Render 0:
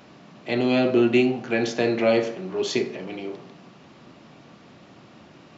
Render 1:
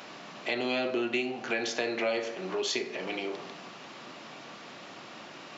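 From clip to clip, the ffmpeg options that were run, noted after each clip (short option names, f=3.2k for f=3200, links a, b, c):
-af "highpass=f=840:p=1,acompressor=threshold=-40dB:ratio=3,volume=8.5dB"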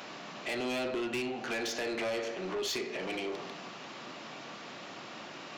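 -af "asoftclip=type=tanh:threshold=-31dB,volume=1dB"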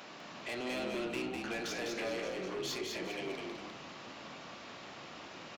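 -filter_complex "[0:a]asplit=5[a][b][c][d][e];[b]adelay=202,afreqshift=-44,volume=-3.5dB[f];[c]adelay=404,afreqshift=-88,volume=-13.4dB[g];[d]adelay=606,afreqshift=-132,volume=-23.3dB[h];[e]adelay=808,afreqshift=-176,volume=-33.2dB[i];[a][f][g][h][i]amix=inputs=5:normalize=0,volume=-5dB"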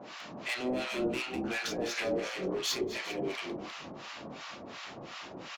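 -filter_complex "[0:a]acrossover=split=850[a][b];[a]aeval=exprs='val(0)*(1-1/2+1/2*cos(2*PI*2.8*n/s))':c=same[c];[b]aeval=exprs='val(0)*(1-1/2-1/2*cos(2*PI*2.8*n/s))':c=same[d];[c][d]amix=inputs=2:normalize=0,volume=9dB" -ar 48000 -c:a libvorbis -b:a 96k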